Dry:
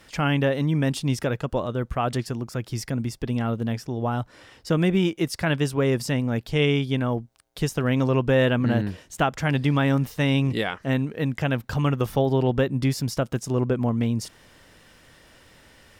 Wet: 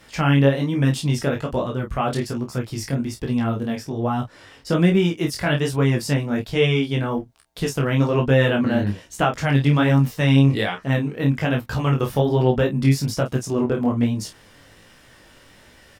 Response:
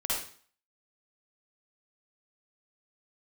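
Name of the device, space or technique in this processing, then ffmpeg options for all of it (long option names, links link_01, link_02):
double-tracked vocal: -filter_complex "[0:a]asplit=2[link_01][link_02];[link_02]adelay=29,volume=-6.5dB[link_03];[link_01][link_03]amix=inputs=2:normalize=0,flanger=delay=15.5:depth=6.5:speed=1.2,volume=5dB"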